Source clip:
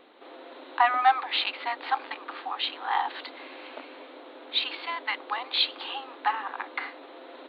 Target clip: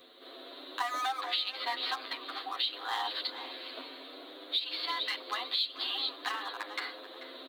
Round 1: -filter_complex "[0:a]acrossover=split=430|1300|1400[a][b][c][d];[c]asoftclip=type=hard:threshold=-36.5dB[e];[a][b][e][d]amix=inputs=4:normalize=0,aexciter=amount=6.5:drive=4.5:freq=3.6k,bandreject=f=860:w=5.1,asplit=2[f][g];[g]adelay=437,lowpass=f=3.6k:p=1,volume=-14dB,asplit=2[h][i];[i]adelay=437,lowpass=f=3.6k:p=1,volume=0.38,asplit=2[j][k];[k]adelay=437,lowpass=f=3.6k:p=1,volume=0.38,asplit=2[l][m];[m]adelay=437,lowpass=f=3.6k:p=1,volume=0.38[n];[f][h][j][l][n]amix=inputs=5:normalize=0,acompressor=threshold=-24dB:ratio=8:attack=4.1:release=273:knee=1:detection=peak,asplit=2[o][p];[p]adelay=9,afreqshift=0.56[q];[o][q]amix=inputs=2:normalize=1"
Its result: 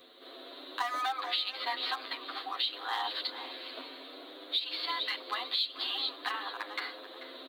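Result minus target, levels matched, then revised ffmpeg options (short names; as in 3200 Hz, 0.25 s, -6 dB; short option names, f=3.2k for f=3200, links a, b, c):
hard clip: distortion -5 dB
-filter_complex "[0:a]acrossover=split=430|1300|1400[a][b][c][d];[c]asoftclip=type=hard:threshold=-42.5dB[e];[a][b][e][d]amix=inputs=4:normalize=0,aexciter=amount=6.5:drive=4.5:freq=3.6k,bandreject=f=860:w=5.1,asplit=2[f][g];[g]adelay=437,lowpass=f=3.6k:p=1,volume=-14dB,asplit=2[h][i];[i]adelay=437,lowpass=f=3.6k:p=1,volume=0.38,asplit=2[j][k];[k]adelay=437,lowpass=f=3.6k:p=1,volume=0.38,asplit=2[l][m];[m]adelay=437,lowpass=f=3.6k:p=1,volume=0.38[n];[f][h][j][l][n]amix=inputs=5:normalize=0,acompressor=threshold=-24dB:ratio=8:attack=4.1:release=273:knee=1:detection=peak,asplit=2[o][p];[p]adelay=9,afreqshift=0.56[q];[o][q]amix=inputs=2:normalize=1"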